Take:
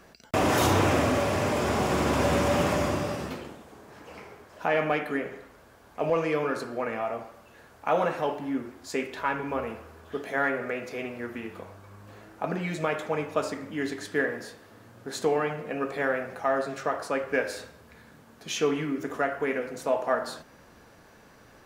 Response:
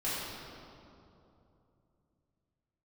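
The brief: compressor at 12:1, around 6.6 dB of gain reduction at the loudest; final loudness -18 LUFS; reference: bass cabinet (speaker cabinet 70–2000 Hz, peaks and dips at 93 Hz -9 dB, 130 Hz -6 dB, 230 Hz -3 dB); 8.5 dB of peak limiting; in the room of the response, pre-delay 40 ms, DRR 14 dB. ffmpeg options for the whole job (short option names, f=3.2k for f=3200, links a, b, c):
-filter_complex "[0:a]acompressor=threshold=-26dB:ratio=12,alimiter=limit=-23dB:level=0:latency=1,asplit=2[a][b];[1:a]atrim=start_sample=2205,adelay=40[c];[b][c]afir=irnorm=-1:irlink=0,volume=-21dB[d];[a][d]amix=inputs=2:normalize=0,highpass=f=70:w=0.5412,highpass=f=70:w=1.3066,equalizer=f=93:t=q:w=4:g=-9,equalizer=f=130:t=q:w=4:g=-6,equalizer=f=230:t=q:w=4:g=-3,lowpass=f=2k:w=0.5412,lowpass=f=2k:w=1.3066,volume=17dB"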